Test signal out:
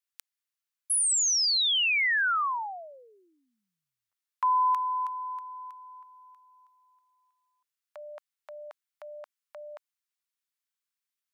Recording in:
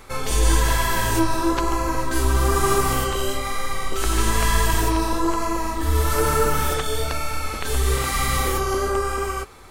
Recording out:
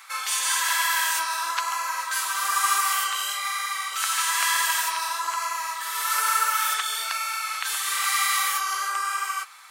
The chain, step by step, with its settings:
high-pass filter 1,100 Hz 24 dB per octave
level +2.5 dB

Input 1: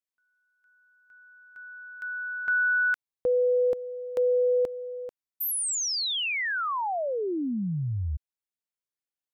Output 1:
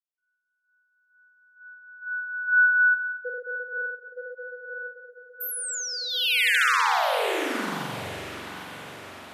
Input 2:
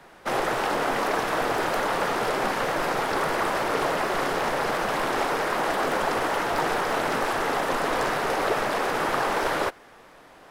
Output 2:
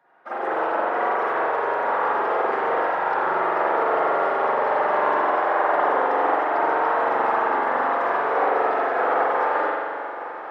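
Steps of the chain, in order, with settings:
expanding power law on the bin magnitudes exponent 2
high-pass filter 830 Hz 6 dB per octave
brickwall limiter −23.5 dBFS
on a send: feedback delay with all-pass diffusion 934 ms, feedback 64%, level −9.5 dB
on the sum: spring reverb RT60 2.3 s, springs 43 ms, chirp 45 ms, DRR −8 dB
expander for the loud parts 1.5 to 1, over −45 dBFS
level +2 dB

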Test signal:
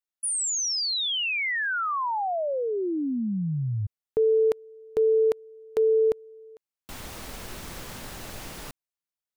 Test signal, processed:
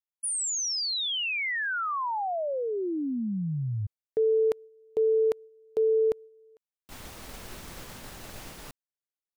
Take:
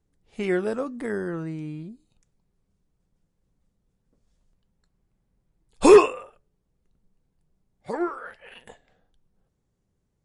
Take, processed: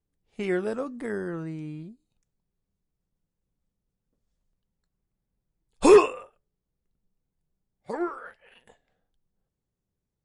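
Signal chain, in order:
downward expander −36 dBFS, range −7 dB
level −2.5 dB

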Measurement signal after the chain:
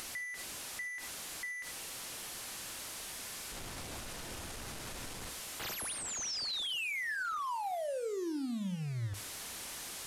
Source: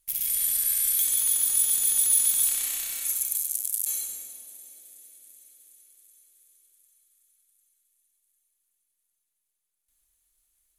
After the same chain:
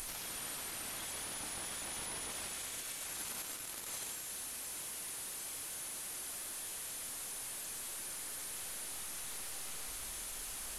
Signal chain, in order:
linear delta modulator 64 kbit/s, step −31 dBFS
brickwall limiter −28.5 dBFS
upward compression, threshold −40 dBFS
reverb whose tail is shaped and stops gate 110 ms flat, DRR 10.5 dB
level −6 dB

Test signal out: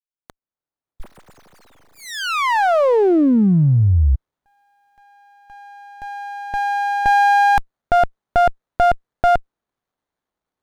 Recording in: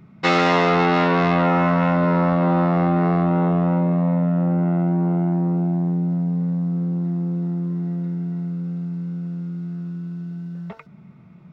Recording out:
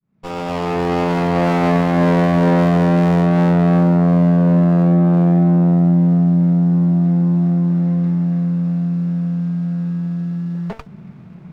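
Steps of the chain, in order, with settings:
fade in at the beginning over 2.59 s
brickwall limiter −16 dBFS
windowed peak hold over 17 samples
level +8.5 dB

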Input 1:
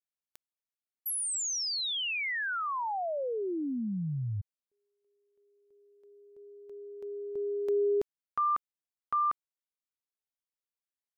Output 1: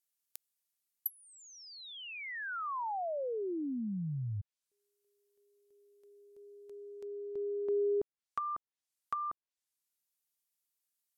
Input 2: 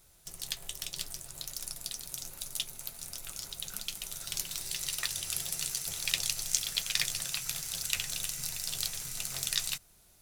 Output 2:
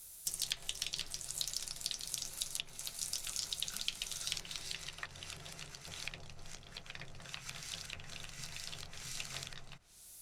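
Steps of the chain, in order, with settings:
treble cut that deepens with the level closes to 800 Hz, closed at −29.5 dBFS
first-order pre-emphasis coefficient 0.8
level +10.5 dB

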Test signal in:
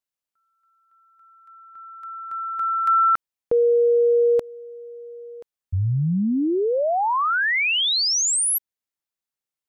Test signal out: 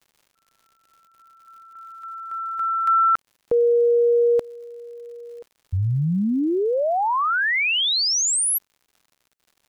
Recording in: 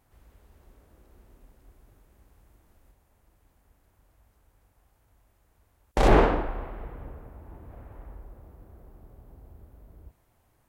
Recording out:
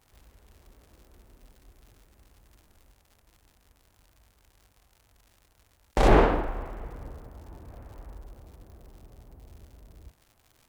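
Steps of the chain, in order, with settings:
surface crackle 150 per second −46 dBFS

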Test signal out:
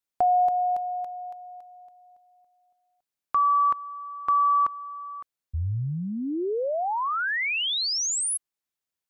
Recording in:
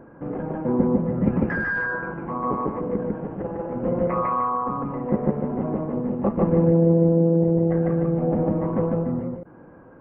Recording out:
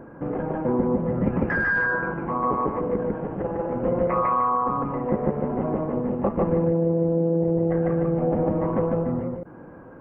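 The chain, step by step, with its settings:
dynamic equaliser 200 Hz, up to −5 dB, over −33 dBFS, Q 0.89
downward compressor, threshold −21 dBFS
level +3.5 dB

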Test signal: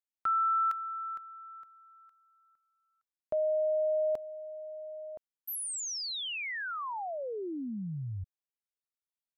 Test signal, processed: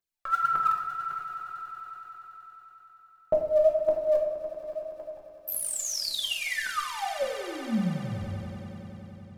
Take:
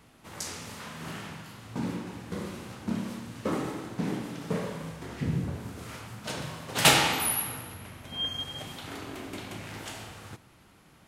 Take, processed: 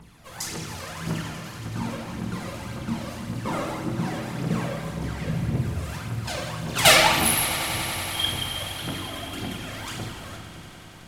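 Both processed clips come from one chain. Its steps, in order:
phase shifter 1.8 Hz, delay 1.9 ms, feedback 79%
echo that builds up and dies away 94 ms, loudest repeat 5, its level −17.5 dB
rectangular room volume 220 cubic metres, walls mixed, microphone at 0.88 metres
level −1 dB

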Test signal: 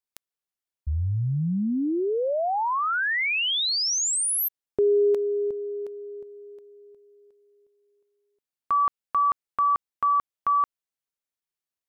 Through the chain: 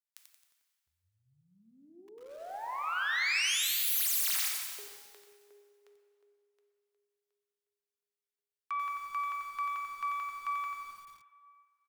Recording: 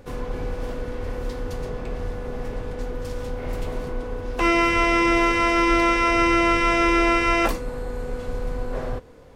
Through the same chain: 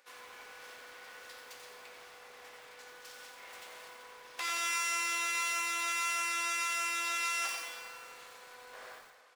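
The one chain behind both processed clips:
stylus tracing distortion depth 0.19 ms
far-end echo of a speakerphone 340 ms, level −29 dB
downward compressor 6 to 1, threshold −21 dBFS
high-pass filter 1,500 Hz 12 dB per octave
dense smooth reverb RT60 2 s, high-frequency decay 0.9×, DRR 3 dB
feedback echo at a low word length 89 ms, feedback 55%, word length 8 bits, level −5 dB
level −6.5 dB

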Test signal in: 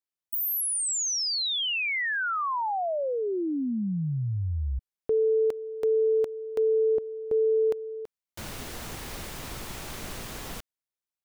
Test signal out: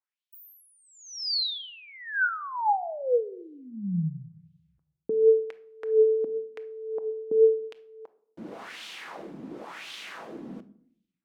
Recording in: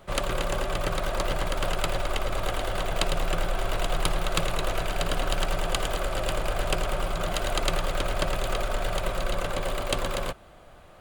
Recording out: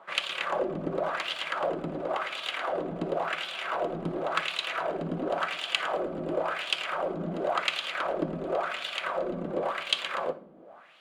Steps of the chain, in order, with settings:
low shelf with overshoot 140 Hz −10.5 dB, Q 1.5
auto-filter band-pass sine 0.93 Hz 230–3,300 Hz
rectangular room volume 960 cubic metres, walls furnished, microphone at 0.66 metres
level +7 dB

